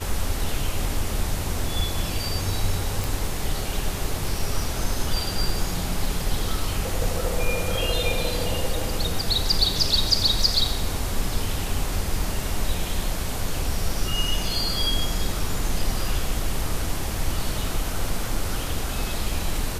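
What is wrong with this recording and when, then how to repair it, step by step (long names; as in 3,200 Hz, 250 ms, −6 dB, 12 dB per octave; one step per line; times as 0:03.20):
0:03.04: click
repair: click removal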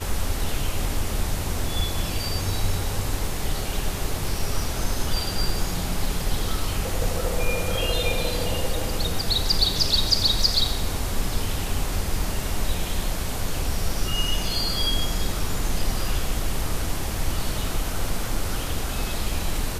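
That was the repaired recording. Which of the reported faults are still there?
none of them is left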